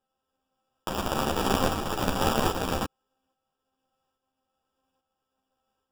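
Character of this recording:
a buzz of ramps at a fixed pitch in blocks of 8 samples
tremolo saw up 1.2 Hz, depth 45%
aliases and images of a low sample rate 2,100 Hz, jitter 0%
a shimmering, thickened sound

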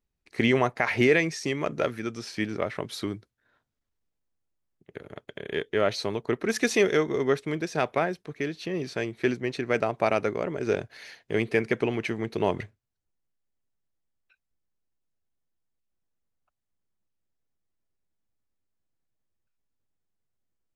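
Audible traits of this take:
background noise floor −82 dBFS
spectral slope −4.0 dB per octave

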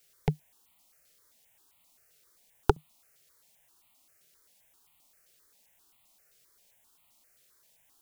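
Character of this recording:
a quantiser's noise floor 12 bits, dither triangular
notches that jump at a steady rate 7.6 Hz 260–1,600 Hz

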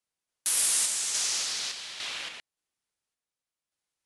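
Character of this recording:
sample-and-hold tremolo
AAC

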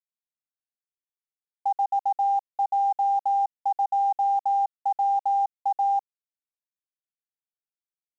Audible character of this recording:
a quantiser's noise floor 12 bits, dither none
mu-law

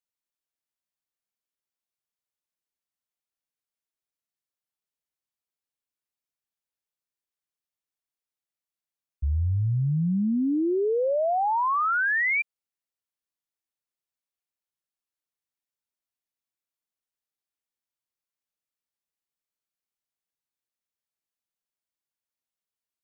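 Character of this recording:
background noise floor −93 dBFS
spectral slope −3.0 dB per octave

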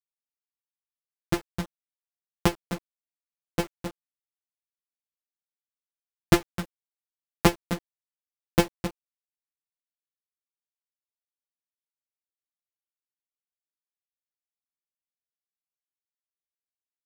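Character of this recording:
a buzz of ramps at a fixed pitch in blocks of 256 samples
sample-and-hold tremolo 3.5 Hz
a quantiser's noise floor 8 bits, dither none
a shimmering, thickened sound

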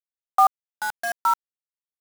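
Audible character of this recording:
sample-and-hold tremolo 4.1 Hz, depth 95%
a quantiser's noise floor 6 bits, dither none

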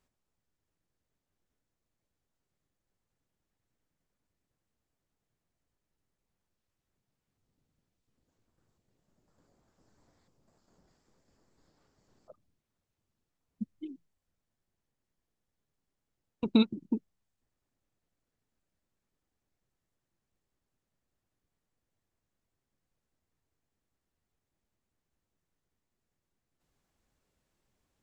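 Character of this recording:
background noise floor −86 dBFS
spectral slope −5.0 dB per octave

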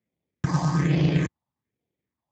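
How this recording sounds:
aliases and images of a low sample rate 1,400 Hz, jitter 0%
phaser sweep stages 4, 1.2 Hz, lowest notch 410–1,300 Hz
Speex

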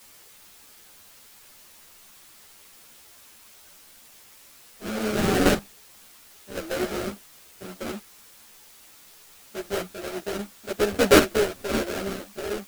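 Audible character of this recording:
aliases and images of a low sample rate 1,000 Hz, jitter 20%
chopped level 0.55 Hz, depth 65%, duty 15%
a quantiser's noise floor 10 bits, dither triangular
a shimmering, thickened sound

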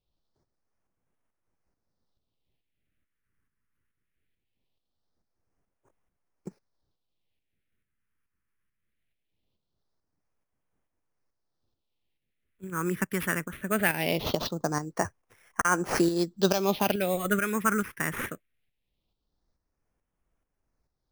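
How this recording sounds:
aliases and images of a low sample rate 7,600 Hz, jitter 0%
phaser sweep stages 4, 0.21 Hz, lowest notch 670–4,000 Hz
tremolo saw up 2.3 Hz, depth 55%

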